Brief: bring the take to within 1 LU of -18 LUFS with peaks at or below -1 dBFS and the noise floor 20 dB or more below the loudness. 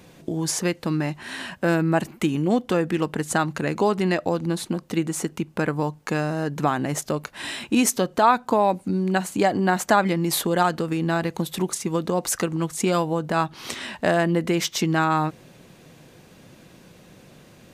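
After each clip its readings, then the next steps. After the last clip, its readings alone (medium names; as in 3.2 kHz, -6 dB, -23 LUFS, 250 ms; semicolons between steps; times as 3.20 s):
loudness -23.5 LUFS; peak level -5.0 dBFS; loudness target -18.0 LUFS
-> trim +5.5 dB; peak limiter -1 dBFS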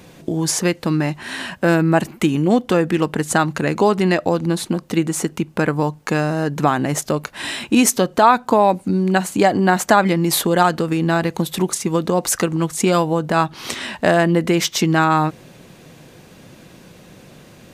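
loudness -18.0 LUFS; peak level -1.0 dBFS; noise floor -45 dBFS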